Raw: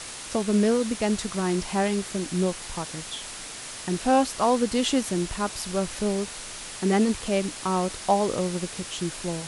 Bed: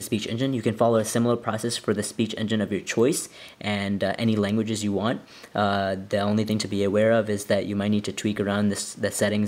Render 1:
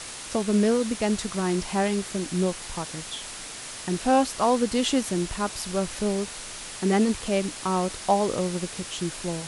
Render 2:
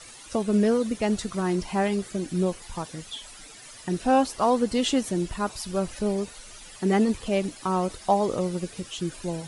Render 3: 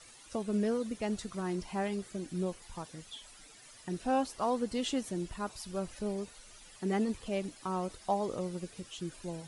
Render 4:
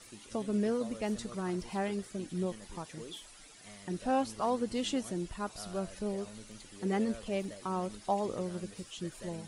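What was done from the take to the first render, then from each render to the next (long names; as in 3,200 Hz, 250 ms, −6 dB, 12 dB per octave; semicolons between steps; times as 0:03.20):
no processing that can be heard
broadband denoise 13 dB, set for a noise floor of −38 dBFS
level −9.5 dB
mix in bed −27 dB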